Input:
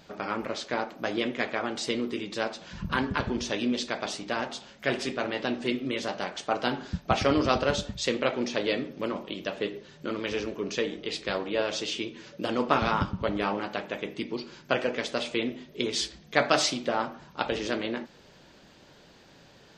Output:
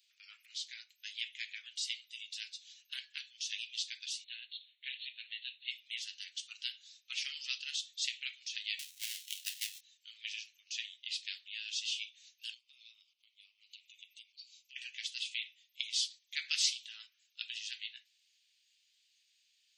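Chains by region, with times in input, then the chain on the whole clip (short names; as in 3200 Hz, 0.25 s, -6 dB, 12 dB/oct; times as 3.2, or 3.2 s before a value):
4.24–5.71 brick-wall FIR band-pass 750–4400 Hz + bell 1100 Hz -5 dB 1.4 oct
8.79–9.81 half-waves squared off + low shelf 440 Hz -11 dB
12.54–14.76 Butterworth band-stop 1600 Hz, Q 1.6 + compressor 10:1, threshold -35 dBFS
whole clip: steep high-pass 2400 Hz 36 dB/oct; spectral noise reduction 9 dB; gain -3 dB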